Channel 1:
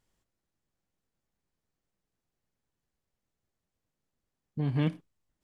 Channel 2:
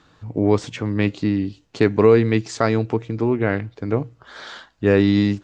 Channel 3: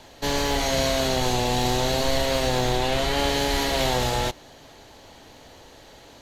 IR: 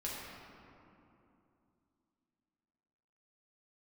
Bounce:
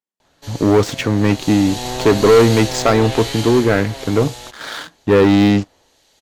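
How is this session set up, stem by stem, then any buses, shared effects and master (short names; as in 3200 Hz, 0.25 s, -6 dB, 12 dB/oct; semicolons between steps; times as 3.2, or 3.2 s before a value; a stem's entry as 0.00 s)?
-14.5 dB, 0.00 s, no send, steep high-pass 180 Hz
-1.0 dB, 0.25 s, no send, sample leveller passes 3
1.13 s -11.5 dB -> 1.87 s 0 dB -> 3.3 s 0 dB -> 3.82 s -8 dB, 0.20 s, no send, LPF 11000 Hz 12 dB/oct; harmonic tremolo 1.1 Hz, depth 50%, crossover 2200 Hz; high shelf 5600 Hz +10.5 dB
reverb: off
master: low shelf 220 Hz -3.5 dB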